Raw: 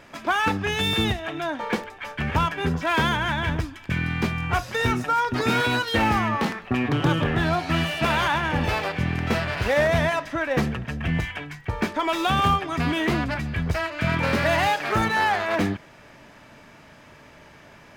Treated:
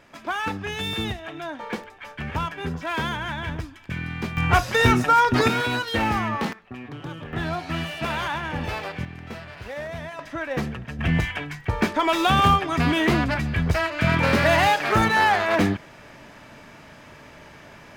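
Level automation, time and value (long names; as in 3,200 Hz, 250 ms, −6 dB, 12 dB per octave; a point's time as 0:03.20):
−5 dB
from 0:04.37 +5.5 dB
from 0:05.48 −2 dB
from 0:06.53 −14 dB
from 0:07.33 −5 dB
from 0:09.05 −13 dB
from 0:10.19 −4 dB
from 0:10.99 +3 dB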